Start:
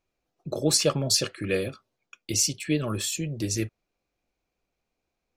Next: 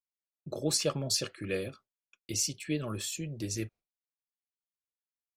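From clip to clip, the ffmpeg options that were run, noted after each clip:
-af "agate=range=-33dB:threshold=-42dB:ratio=3:detection=peak,volume=-7dB"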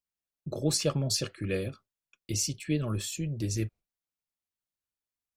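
-af "lowshelf=f=180:g=10.5"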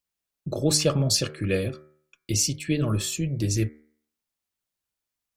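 -af "bandreject=f=75.77:t=h:w=4,bandreject=f=151.54:t=h:w=4,bandreject=f=227.31:t=h:w=4,bandreject=f=303.08:t=h:w=4,bandreject=f=378.85:t=h:w=4,bandreject=f=454.62:t=h:w=4,bandreject=f=530.39:t=h:w=4,bandreject=f=606.16:t=h:w=4,bandreject=f=681.93:t=h:w=4,bandreject=f=757.7:t=h:w=4,bandreject=f=833.47:t=h:w=4,bandreject=f=909.24:t=h:w=4,bandreject=f=985.01:t=h:w=4,bandreject=f=1.06078k:t=h:w=4,bandreject=f=1.13655k:t=h:w=4,bandreject=f=1.21232k:t=h:w=4,bandreject=f=1.28809k:t=h:w=4,bandreject=f=1.36386k:t=h:w=4,bandreject=f=1.43963k:t=h:w=4,bandreject=f=1.5154k:t=h:w=4,bandreject=f=1.59117k:t=h:w=4,bandreject=f=1.66694k:t=h:w=4,bandreject=f=1.74271k:t=h:w=4,bandreject=f=1.81848k:t=h:w=4,bandreject=f=1.89425k:t=h:w=4,bandreject=f=1.97002k:t=h:w=4,bandreject=f=2.04579k:t=h:w=4,bandreject=f=2.12156k:t=h:w=4,bandreject=f=2.19733k:t=h:w=4,bandreject=f=2.2731k:t=h:w=4,bandreject=f=2.34887k:t=h:w=4,volume=6.5dB"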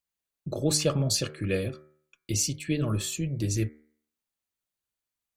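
-af "bandreject=f=5.3k:w=14,volume=-3dB"

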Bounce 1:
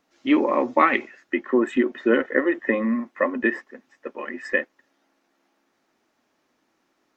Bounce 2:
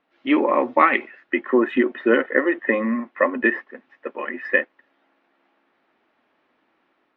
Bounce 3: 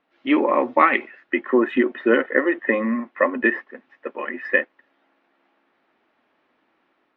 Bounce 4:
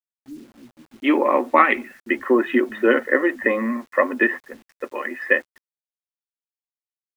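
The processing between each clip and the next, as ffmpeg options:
-af "lowpass=f=3.3k:w=0.5412,lowpass=f=3.3k:w=1.3066,lowshelf=f=250:g=-8,dynaudnorm=f=130:g=5:m=4dB,volume=1dB"
-af anull
-filter_complex "[0:a]acrossover=split=170[a][b];[b]adelay=770[c];[a][c]amix=inputs=2:normalize=0,agate=range=-8dB:threshold=-46dB:ratio=16:detection=peak,acrusher=bits=8:mix=0:aa=0.000001,volume=1dB"

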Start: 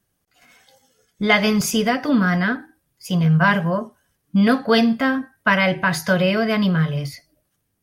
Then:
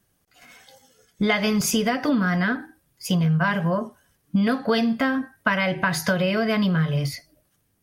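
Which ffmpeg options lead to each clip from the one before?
-af "acompressor=threshold=-22dB:ratio=6,volume=3.5dB"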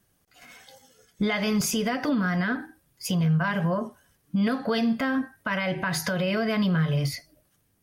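-af "alimiter=limit=-17dB:level=0:latency=1:release=112"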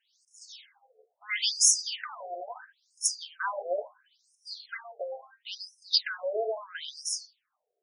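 -af "highshelf=f=2.7k:t=q:w=1.5:g=9,afftfilt=real='re*between(b*sr/1024,520*pow(7400/520,0.5+0.5*sin(2*PI*0.74*pts/sr))/1.41,520*pow(7400/520,0.5+0.5*sin(2*PI*0.74*pts/sr))*1.41)':imag='im*between(b*sr/1024,520*pow(7400/520,0.5+0.5*sin(2*PI*0.74*pts/sr))/1.41,520*pow(7400/520,0.5+0.5*sin(2*PI*0.74*pts/sr))*1.41)':win_size=1024:overlap=0.75"

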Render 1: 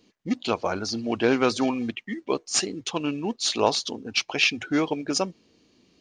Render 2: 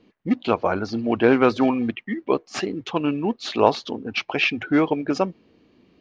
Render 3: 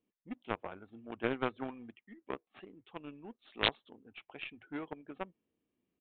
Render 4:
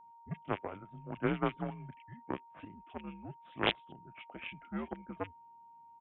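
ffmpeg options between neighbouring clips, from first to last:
-af "lowpass=2.3k,volume=5dB"
-af "aeval=exprs='0.891*(cos(1*acos(clip(val(0)/0.891,-1,1)))-cos(1*PI/2))+0.0251*(cos(2*acos(clip(val(0)/0.891,-1,1)))-cos(2*PI/2))+0.316*(cos(3*acos(clip(val(0)/0.891,-1,1)))-cos(3*PI/2))+0.0251*(cos(5*acos(clip(val(0)/0.891,-1,1)))-cos(5*PI/2))':c=same,aresample=8000,aeval=exprs='(mod(2.24*val(0)+1,2)-1)/2.24':c=same,aresample=44100,volume=-5dB"
-filter_complex "[0:a]highpass=f=150:t=q:w=0.5412,highpass=f=150:t=q:w=1.307,lowpass=f=3.3k:t=q:w=0.5176,lowpass=f=3.3k:t=q:w=0.7071,lowpass=f=3.3k:t=q:w=1.932,afreqshift=-91,acrossover=split=2100[a][b];[b]adelay=30[c];[a][c]amix=inputs=2:normalize=0,aeval=exprs='val(0)+0.00141*sin(2*PI*930*n/s)':c=same,volume=2.5dB"

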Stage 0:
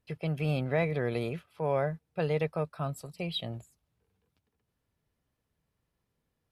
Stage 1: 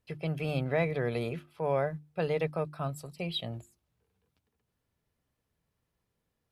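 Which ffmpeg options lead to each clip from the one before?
-af "bandreject=f=50:t=h:w=6,bandreject=f=100:t=h:w=6,bandreject=f=150:t=h:w=6,bandreject=f=200:t=h:w=6,bandreject=f=250:t=h:w=6,bandreject=f=300:t=h:w=6,bandreject=f=350:t=h:w=6"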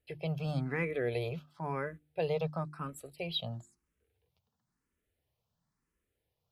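-filter_complex "[0:a]asplit=2[a][b];[b]afreqshift=0.98[c];[a][c]amix=inputs=2:normalize=1"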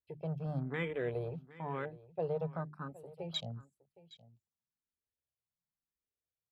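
-af "afwtdn=0.00794,aecho=1:1:766:0.112,volume=-3dB"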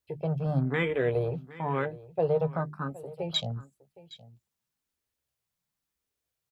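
-filter_complex "[0:a]asplit=2[a][b];[b]adelay=15,volume=-13dB[c];[a][c]amix=inputs=2:normalize=0,volume=9dB"

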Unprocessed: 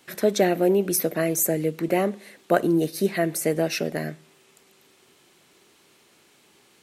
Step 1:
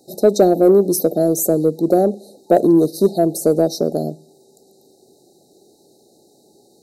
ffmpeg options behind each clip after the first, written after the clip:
-filter_complex "[0:a]afftfilt=real='re*(1-between(b*sr/4096,870,3700))':imag='im*(1-between(b*sr/4096,870,3700))':win_size=4096:overlap=0.75,equalizer=f=410:w=0.51:g=8,asplit=2[a][b];[b]acontrast=30,volume=2.5dB[c];[a][c]amix=inputs=2:normalize=0,volume=-8.5dB"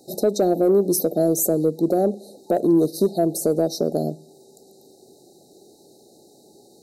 -af "alimiter=limit=-11.5dB:level=0:latency=1:release=411,volume=1.5dB"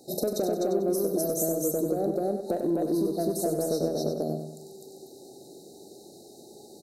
-filter_complex "[0:a]asplit=2[a][b];[b]aecho=0:1:40.82|253.6:0.355|1[c];[a][c]amix=inputs=2:normalize=0,acompressor=threshold=-24dB:ratio=5,asplit=2[d][e];[e]aecho=0:1:96|192|288|384|480:0.398|0.159|0.0637|0.0255|0.0102[f];[d][f]amix=inputs=2:normalize=0,volume=-1.5dB"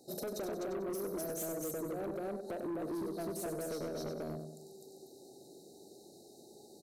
-af "asoftclip=type=tanh:threshold=-27dB,volume=-7.5dB"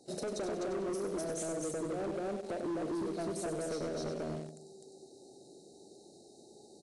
-filter_complex "[0:a]asplit=2[a][b];[b]acrusher=bits=6:mix=0:aa=0.000001,volume=-10dB[c];[a][c]amix=inputs=2:normalize=0" -ar 22050 -c:a aac -b:a 96k

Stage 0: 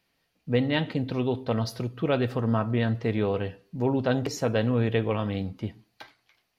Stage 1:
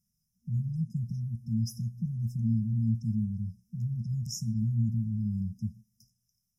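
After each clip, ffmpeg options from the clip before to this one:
-af "afftfilt=real='re*(1-between(b*sr/4096,230,5000))':imag='im*(1-between(b*sr/4096,230,5000))':win_size=4096:overlap=0.75"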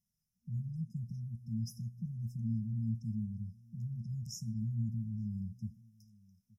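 -filter_complex "[0:a]asplit=2[a][b];[b]adelay=874.6,volume=-24dB,highshelf=f=4k:g=-19.7[c];[a][c]amix=inputs=2:normalize=0,volume=-7.5dB"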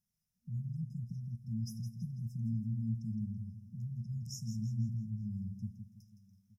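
-af "aecho=1:1:165|330|495|660:0.335|0.137|0.0563|0.0231,volume=-1dB"

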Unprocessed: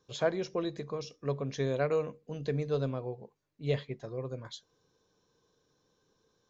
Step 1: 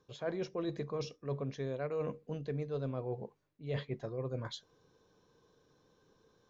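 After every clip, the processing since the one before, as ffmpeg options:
-af "highshelf=f=4.7k:g=-11,areverse,acompressor=threshold=-39dB:ratio=8,areverse,volume=5dB"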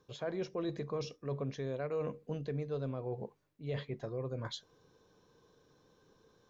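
-af "alimiter=level_in=6.5dB:limit=-24dB:level=0:latency=1:release=121,volume=-6.5dB,volume=2dB"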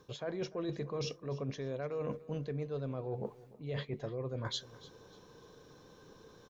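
-af "areverse,acompressor=threshold=-45dB:ratio=6,areverse,aecho=1:1:296|592|888:0.112|0.0393|0.0137,volume=9.5dB"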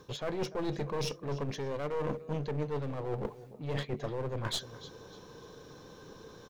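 -af "aeval=exprs='clip(val(0),-1,0.00631)':c=same,volume=6.5dB"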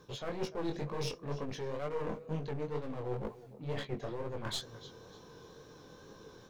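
-af "flanger=delay=18:depth=6.4:speed=2.1"

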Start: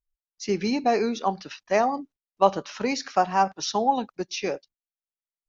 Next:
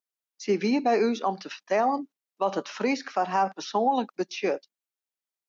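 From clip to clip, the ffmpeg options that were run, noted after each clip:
-filter_complex "[0:a]highpass=f=200:w=0.5412,highpass=f=200:w=1.3066,acrossover=split=2900[a][b];[b]acompressor=threshold=-44dB:ratio=6[c];[a][c]amix=inputs=2:normalize=0,alimiter=limit=-16.5dB:level=0:latency=1:release=57,volume=2dB"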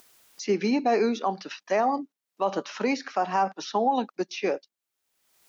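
-af "acompressor=mode=upward:threshold=-33dB:ratio=2.5"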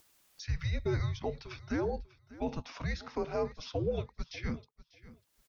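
-af "afreqshift=-330,aecho=1:1:594|1188:0.119|0.019,volume=-8.5dB"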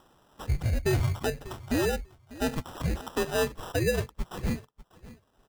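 -af "acrusher=samples=20:mix=1:aa=0.000001,volume=6dB"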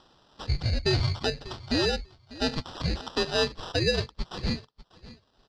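-af "lowpass=f=4.5k:t=q:w=6.9"

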